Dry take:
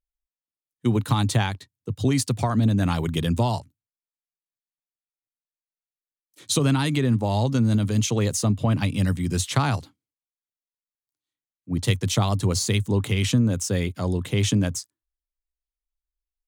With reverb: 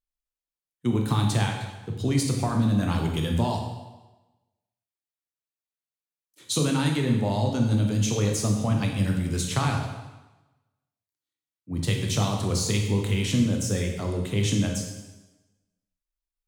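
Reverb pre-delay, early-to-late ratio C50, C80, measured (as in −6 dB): 8 ms, 4.5 dB, 6.5 dB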